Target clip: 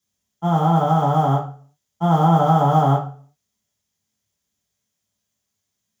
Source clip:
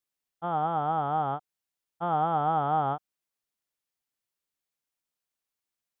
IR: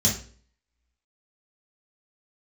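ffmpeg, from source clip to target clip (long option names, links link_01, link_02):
-filter_complex "[0:a]acrusher=bits=9:mode=log:mix=0:aa=0.000001[link_01];[1:a]atrim=start_sample=2205,afade=type=out:start_time=0.44:duration=0.01,atrim=end_sample=19845[link_02];[link_01][link_02]afir=irnorm=-1:irlink=0,volume=-2dB"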